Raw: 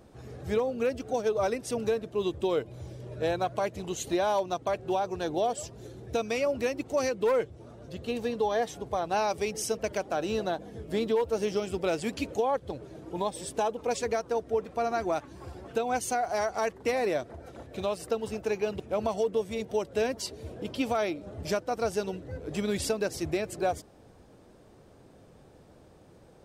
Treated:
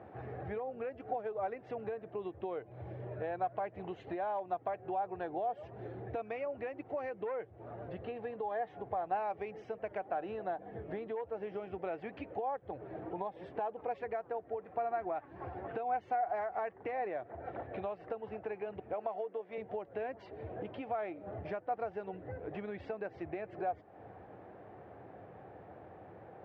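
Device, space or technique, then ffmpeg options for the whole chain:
bass amplifier: -filter_complex "[0:a]asettb=1/sr,asplit=3[a][b][c];[a]atrim=end=18.934[d];[b]atrim=start=18.93:end=19.58,asetpts=PTS-STARTPTS,afade=t=in:d=0.004:c=qsin,afade=t=out:st=0.646:d=0.004:c=qsin,highpass=300[e];[c]atrim=start=19.576[f];[d][e]acrossfade=d=0.004:c1=hsin:c2=qsin[g];[g][f]acrossfade=d=0.004:c1=qsin:c2=hsin,acompressor=threshold=-42dB:ratio=5,highpass=f=86:w=0.5412,highpass=f=86:w=1.3066,equalizer=f=150:t=q:w=4:g=-6,equalizer=f=240:t=q:w=4:g=-7,equalizer=f=750:t=q:w=4:g=9,equalizer=f=1.8k:t=q:w=4:g=4,lowpass=f=2.3k:w=0.5412,lowpass=f=2.3k:w=1.3066,volume=3dB"

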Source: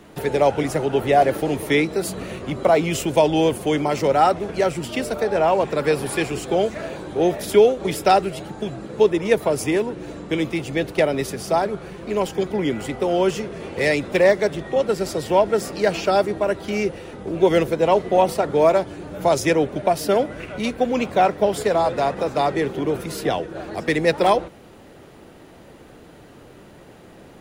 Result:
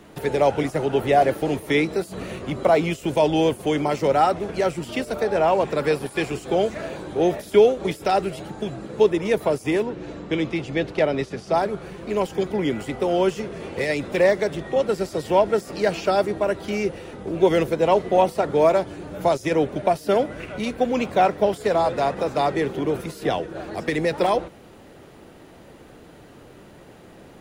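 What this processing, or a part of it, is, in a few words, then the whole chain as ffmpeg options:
de-esser from a sidechain: -filter_complex "[0:a]asplit=2[a][b];[b]highpass=f=6.6k:w=0.5412,highpass=f=6.6k:w=1.3066,apad=whole_len=1208657[c];[a][c]sidechaincompress=threshold=-43dB:ratio=10:attack=4.2:release=28,asettb=1/sr,asplit=3[d][e][f];[d]atrim=end=9.834[g];[e]atrim=start=9.83:end=11.55,asetpts=PTS-STARTPTS,afade=t=in:d=0.004:c=qsin,afade=t=out:st=1.716:d=0.004:c=qsin,lowpass=5.9k[h];[f]atrim=start=11.546[i];[g][h]acrossfade=d=0.004:c1=hsin:c2=qsin[j];[j][i]acrossfade=d=0.004:c1=qsin:c2=hsin,volume=-1dB"

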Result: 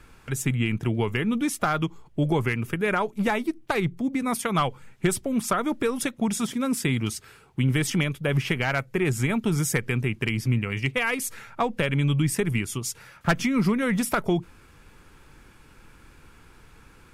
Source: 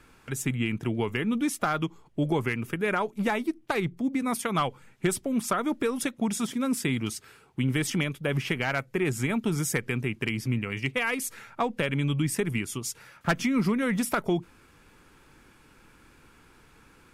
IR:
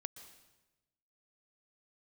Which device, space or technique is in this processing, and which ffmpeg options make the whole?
low shelf boost with a cut just above: -af "lowshelf=f=110:g=7.5,equalizer=f=270:t=o:w=0.77:g=-2.5,volume=2.5dB"

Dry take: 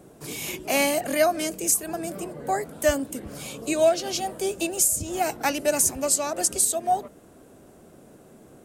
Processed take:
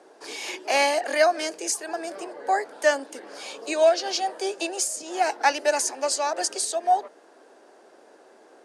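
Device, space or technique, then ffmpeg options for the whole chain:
phone speaker on a table: -af "highpass=f=360:w=0.5412,highpass=f=360:w=1.3066,equalizer=f=870:t=q:w=4:g=7,equalizer=f=1.7k:t=q:w=4:g=7,equalizer=f=4.7k:t=q:w=4:g=6,equalizer=f=7.7k:t=q:w=4:g=-7,lowpass=f=8.4k:w=0.5412,lowpass=f=8.4k:w=1.3066"

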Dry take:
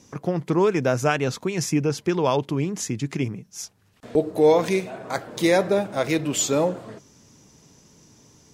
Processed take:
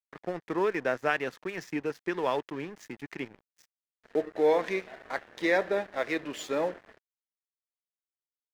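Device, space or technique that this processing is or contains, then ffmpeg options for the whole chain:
pocket radio on a weak battery: -af "highpass=310,lowpass=3.7k,aeval=exprs='sgn(val(0))*max(abs(val(0))-0.01,0)':c=same,equalizer=f=1.8k:t=o:w=0.39:g=9,volume=-6dB"

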